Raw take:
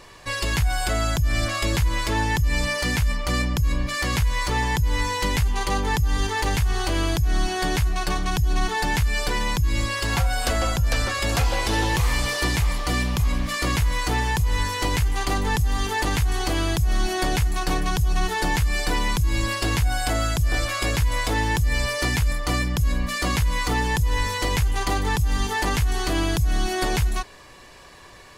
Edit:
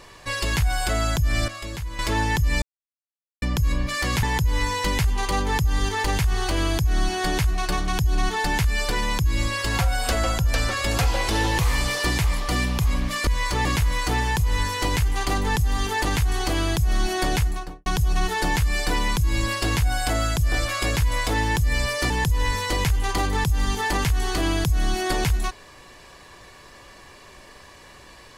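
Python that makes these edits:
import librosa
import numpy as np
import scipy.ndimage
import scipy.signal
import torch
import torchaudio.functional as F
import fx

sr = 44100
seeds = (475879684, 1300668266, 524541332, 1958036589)

y = fx.studio_fade_out(x, sr, start_s=17.38, length_s=0.48)
y = fx.edit(y, sr, fx.clip_gain(start_s=1.48, length_s=0.51, db=-10.0),
    fx.silence(start_s=2.62, length_s=0.8),
    fx.move(start_s=4.23, length_s=0.38, to_s=13.65),
    fx.cut(start_s=22.1, length_s=1.72), tone=tone)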